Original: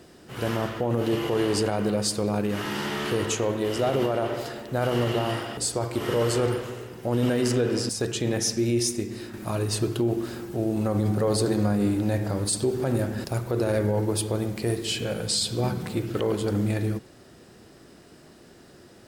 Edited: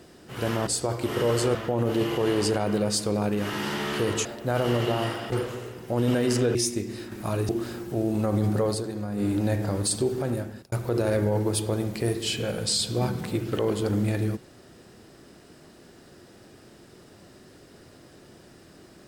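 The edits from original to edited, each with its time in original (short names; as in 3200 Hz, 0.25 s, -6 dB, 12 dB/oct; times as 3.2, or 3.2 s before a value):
3.37–4.52 cut
5.59–6.47 move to 0.67
7.7–8.77 cut
9.71–10.11 cut
11.22–11.96 dip -9 dB, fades 0.24 s
12.49–13.34 fade out equal-power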